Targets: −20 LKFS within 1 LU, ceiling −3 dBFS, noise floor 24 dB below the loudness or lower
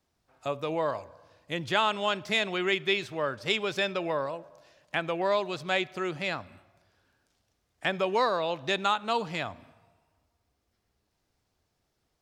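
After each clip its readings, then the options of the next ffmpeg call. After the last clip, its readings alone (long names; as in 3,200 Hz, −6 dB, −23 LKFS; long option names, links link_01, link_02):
integrated loudness −29.5 LKFS; sample peak −10.0 dBFS; target loudness −20.0 LKFS
→ -af "volume=9.5dB,alimiter=limit=-3dB:level=0:latency=1"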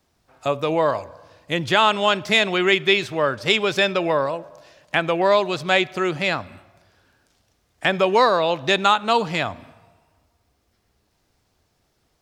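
integrated loudness −20.0 LKFS; sample peak −3.0 dBFS; background noise floor −68 dBFS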